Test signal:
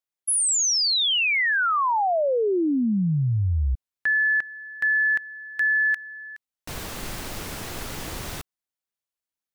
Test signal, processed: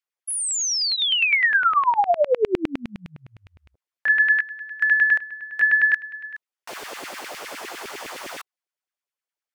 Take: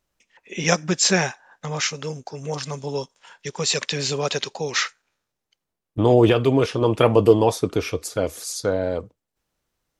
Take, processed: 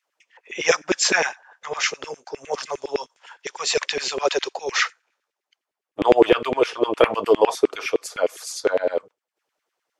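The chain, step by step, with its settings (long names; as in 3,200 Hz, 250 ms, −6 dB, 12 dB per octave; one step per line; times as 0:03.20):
high-shelf EQ 9,400 Hz −8 dB
notch filter 3,900 Hz, Q 22
auto-filter high-pass saw down 9.8 Hz 330–2,500 Hz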